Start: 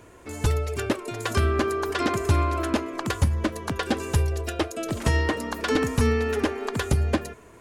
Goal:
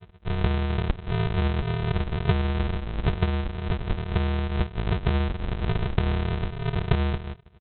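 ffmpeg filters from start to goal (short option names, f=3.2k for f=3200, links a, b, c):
-af "afftdn=nr=35:nf=-35,lowshelf=f=230:g=11.5,acompressor=threshold=-31dB:ratio=6,aresample=8000,acrusher=samples=29:mix=1:aa=0.000001,aresample=44100,volume=8dB"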